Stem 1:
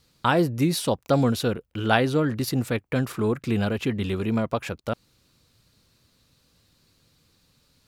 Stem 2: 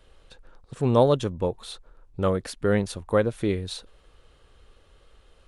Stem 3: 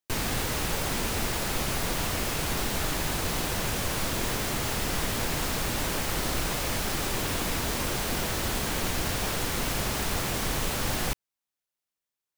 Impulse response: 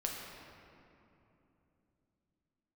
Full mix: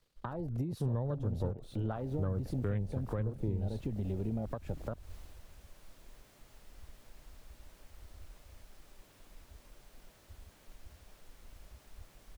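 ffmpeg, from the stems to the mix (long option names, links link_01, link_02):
-filter_complex "[0:a]volume=-1dB[link_01];[1:a]acrusher=bits=8:dc=4:mix=0:aa=0.000001,volume=1.5dB,asplit=2[link_02][link_03];[link_03]volume=-22dB[link_04];[2:a]adelay=1850,volume=-10dB,afade=type=out:start_time=4.76:duration=0.64:silence=0.473151[link_05];[link_01][link_05]amix=inputs=2:normalize=0,equalizer=frequency=600:width=6.9:gain=5,acompressor=threshold=-26dB:ratio=6,volume=0dB[link_06];[3:a]atrim=start_sample=2205[link_07];[link_04][link_07]afir=irnorm=-1:irlink=0[link_08];[link_02][link_06][link_08]amix=inputs=3:normalize=0,afwtdn=0.0316,acrossover=split=130[link_09][link_10];[link_10]acompressor=threshold=-39dB:ratio=3[link_11];[link_09][link_11]amix=inputs=2:normalize=0,alimiter=level_in=0.5dB:limit=-24dB:level=0:latency=1:release=252,volume=-0.5dB"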